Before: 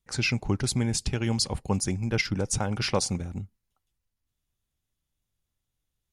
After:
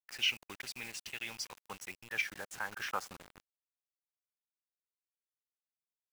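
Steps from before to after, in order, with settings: band-pass sweep 2200 Hz -> 700 Hz, 1.32–4.95; requantised 8-bit, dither none; formant shift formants +2 st

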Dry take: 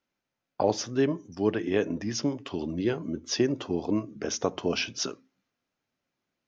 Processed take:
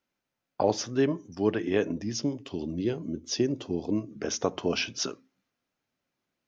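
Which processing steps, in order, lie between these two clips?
1.92–4.11 bell 1300 Hz -9.5 dB 1.9 oct

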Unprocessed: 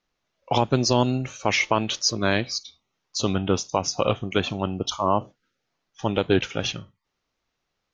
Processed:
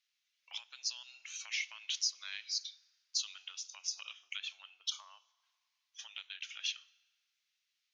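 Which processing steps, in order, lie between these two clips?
compressor 6:1, threshold -30 dBFS, peak gain reduction 15.5 dB; ladder high-pass 1900 Hz, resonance 20%; FDN reverb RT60 2.1 s, high-frequency decay 0.55×, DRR 20 dB; gain +3.5 dB

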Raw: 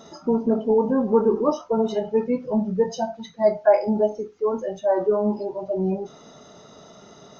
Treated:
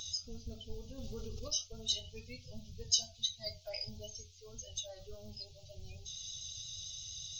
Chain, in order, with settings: inverse Chebyshev band-stop 180–1800 Hz, stop band 40 dB; vibrato 8.6 Hz 25 cents; 0.98–1.48 fast leveller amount 100%; gain +10.5 dB

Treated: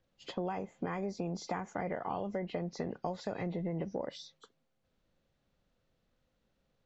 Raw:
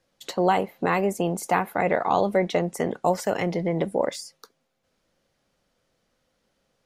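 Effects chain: nonlinear frequency compression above 2000 Hz 1.5:1; low shelf 190 Hz +11 dB; compressor 6:1, threshold -24 dBFS, peak gain reduction 10 dB; gain -9 dB

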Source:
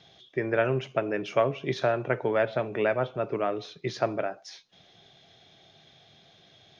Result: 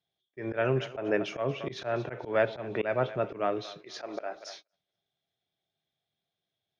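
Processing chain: 0.82–1.3 bell 780 Hz +5.5 dB 1.8 oct; 3.8–4.36 HPF 360 Hz 12 dB/oct; thinning echo 0.234 s, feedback 43%, high-pass 460 Hz, level -16.5 dB; gate -48 dBFS, range -30 dB; auto swell 0.131 s

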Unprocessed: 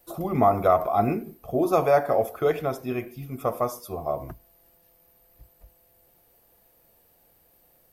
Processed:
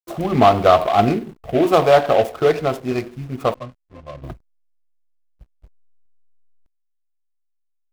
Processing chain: 3.54–4.24 octave resonator C, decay 0.14 s; backlash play -41 dBFS; noise-modulated delay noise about 2000 Hz, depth 0.033 ms; gain +7 dB

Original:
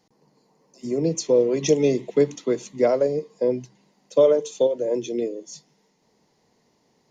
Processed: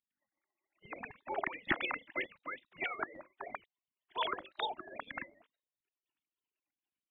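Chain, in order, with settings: sine-wave speech; spectral gate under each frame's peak -30 dB weak; record warp 33 1/3 rpm, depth 100 cents; gain +9.5 dB

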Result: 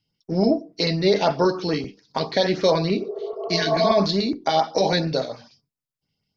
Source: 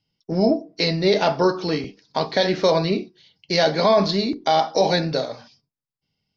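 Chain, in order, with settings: spectral repair 3.02–3.9, 380–1400 Hz both; LFO notch saw up 6.9 Hz 530–4500 Hz

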